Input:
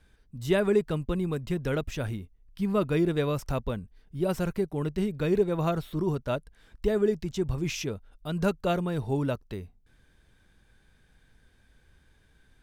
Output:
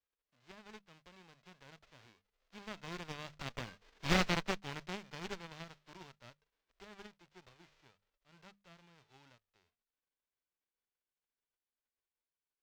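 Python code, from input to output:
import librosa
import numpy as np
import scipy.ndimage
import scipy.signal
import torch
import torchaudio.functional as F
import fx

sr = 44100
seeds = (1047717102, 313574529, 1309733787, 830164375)

y = fx.envelope_flatten(x, sr, power=0.1)
y = fx.doppler_pass(y, sr, speed_mps=9, closest_m=1.6, pass_at_s=4.09)
y = fx.hum_notches(y, sr, base_hz=50, count=4)
y = fx.cheby_harmonics(y, sr, harmonics=(3, 8), levels_db=(-18, -10), full_scale_db=-10.5)
y = fx.air_absorb(y, sr, metres=190.0)
y = F.gain(torch.from_numpy(y), 1.0).numpy()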